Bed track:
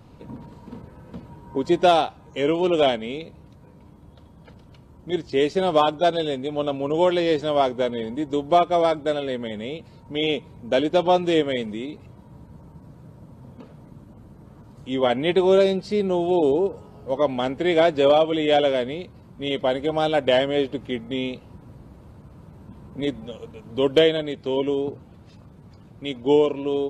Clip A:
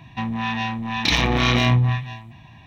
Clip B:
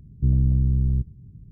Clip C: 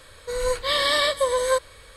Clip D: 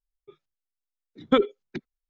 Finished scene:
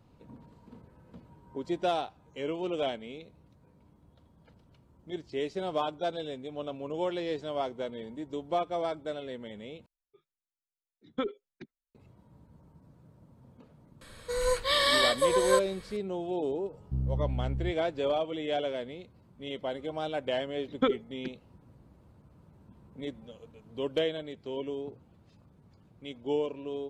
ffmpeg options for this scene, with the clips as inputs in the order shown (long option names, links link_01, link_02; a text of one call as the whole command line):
ffmpeg -i bed.wav -i cue0.wav -i cue1.wav -i cue2.wav -i cue3.wav -filter_complex "[4:a]asplit=2[link_01][link_02];[0:a]volume=-12.5dB,asplit=2[link_03][link_04];[link_03]atrim=end=9.864[link_05];[link_01]atrim=end=2.09,asetpts=PTS-STARTPTS,volume=-12.5dB[link_06];[link_04]atrim=start=11.946[link_07];[3:a]atrim=end=1.96,asetpts=PTS-STARTPTS,volume=-3.5dB,afade=type=in:duration=0.004:curve=hsin,afade=type=out:start_time=1.956:duration=0.004:curve=hsin,adelay=14010[link_08];[2:a]atrim=end=1.51,asetpts=PTS-STARTPTS,volume=-11.5dB,afade=type=in:duration=0.004:curve=hsin,afade=type=out:start_time=1.506:duration=0.004:curve=hsin,adelay=16690[link_09];[link_02]atrim=end=2.09,asetpts=PTS-STARTPTS,volume=-6.5dB,afade=type=in:duration=0.004:curve=hsin,afade=type=out:start_time=2.086:duration=0.004:curve=hsin,adelay=19500[link_10];[link_05][link_06]acrossfade=duration=0.004:curve1=hsin:curve2=hsin[link_11];[link_11][link_07]acrossfade=duration=0.004:curve1=hsin:curve2=hsin[link_12];[link_12][link_08][link_09][link_10]amix=inputs=4:normalize=0" out.wav